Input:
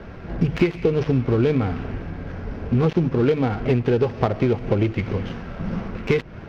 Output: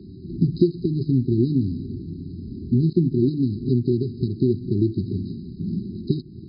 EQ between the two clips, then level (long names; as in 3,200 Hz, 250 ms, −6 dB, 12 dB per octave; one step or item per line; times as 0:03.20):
high-pass filter 100 Hz 12 dB per octave
linear-phase brick-wall band-stop 400–3,800 Hz
linear-phase brick-wall low-pass 5,100 Hz
+1.5 dB